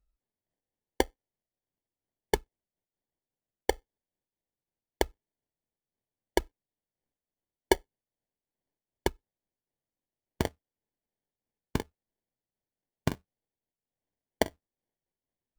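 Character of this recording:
phaser sweep stages 12, 0.3 Hz, lowest notch 610–1,600 Hz
aliases and images of a low sample rate 1,300 Hz, jitter 0%
amplitude modulation by smooth noise

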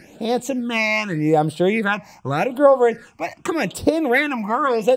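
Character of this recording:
phaser sweep stages 8, 0.84 Hz, lowest notch 440–2,200 Hz

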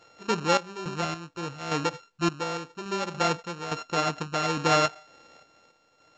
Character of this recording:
a buzz of ramps at a fixed pitch in blocks of 32 samples
sample-and-hold tremolo, depth 80%
mu-law

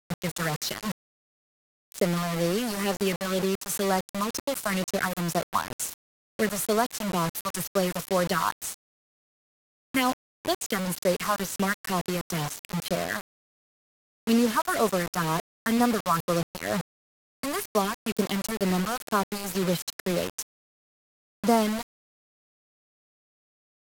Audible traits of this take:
phaser sweep stages 4, 2.1 Hz, lowest notch 370–3,300 Hz
a quantiser's noise floor 6 bits, dither none
SBC

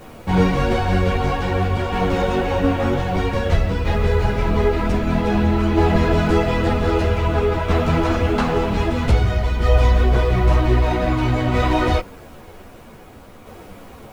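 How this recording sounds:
a quantiser's noise floor 10 bits, dither triangular
tremolo saw down 0.52 Hz, depth 35%
a shimmering, thickened sound

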